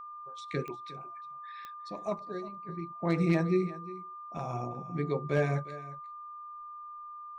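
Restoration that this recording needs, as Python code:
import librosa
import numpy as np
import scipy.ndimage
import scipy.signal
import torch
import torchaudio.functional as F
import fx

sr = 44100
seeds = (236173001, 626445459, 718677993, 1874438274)

y = fx.fix_declip(x, sr, threshold_db=-17.0)
y = fx.fix_declick_ar(y, sr, threshold=10.0)
y = fx.notch(y, sr, hz=1200.0, q=30.0)
y = fx.fix_echo_inverse(y, sr, delay_ms=356, level_db=-17.0)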